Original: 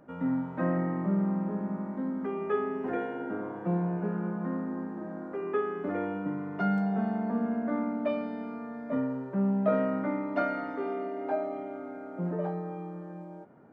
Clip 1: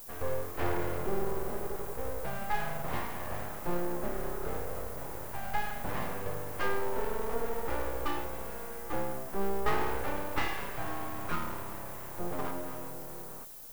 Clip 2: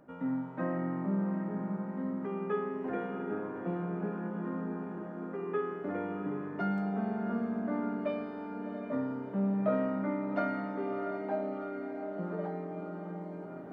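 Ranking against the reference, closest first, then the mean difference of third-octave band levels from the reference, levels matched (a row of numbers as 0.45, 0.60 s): 2, 1; 2.5, 16.0 dB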